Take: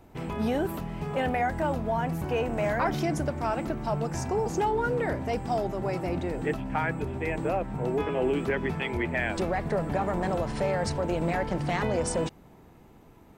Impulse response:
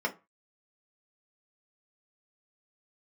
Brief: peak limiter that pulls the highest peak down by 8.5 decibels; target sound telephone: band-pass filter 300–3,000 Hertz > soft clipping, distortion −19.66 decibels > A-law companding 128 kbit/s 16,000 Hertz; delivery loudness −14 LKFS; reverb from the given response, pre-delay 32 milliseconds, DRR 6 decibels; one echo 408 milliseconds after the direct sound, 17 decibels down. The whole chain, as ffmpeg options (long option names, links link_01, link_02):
-filter_complex "[0:a]alimiter=level_in=3dB:limit=-24dB:level=0:latency=1,volume=-3dB,aecho=1:1:408:0.141,asplit=2[link_01][link_02];[1:a]atrim=start_sample=2205,adelay=32[link_03];[link_02][link_03]afir=irnorm=-1:irlink=0,volume=-14dB[link_04];[link_01][link_04]amix=inputs=2:normalize=0,highpass=300,lowpass=3000,asoftclip=threshold=-28dB,volume=23.5dB" -ar 16000 -c:a pcm_alaw